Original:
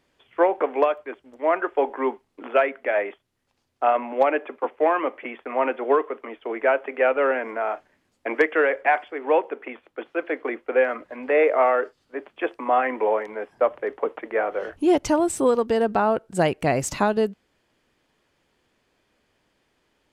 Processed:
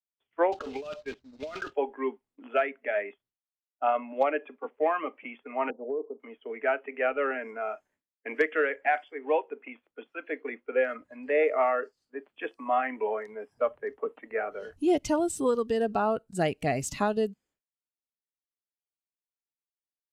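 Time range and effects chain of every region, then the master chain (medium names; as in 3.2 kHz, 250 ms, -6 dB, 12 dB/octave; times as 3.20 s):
0.52–1.73 s: block-companded coder 3-bit + compressor with a negative ratio -27 dBFS + distance through air 180 m
5.70–6.20 s: steep low-pass 860 Hz + compression, threshold -20 dBFS
whole clip: expander -52 dBFS; spectral noise reduction 12 dB; trim -5.5 dB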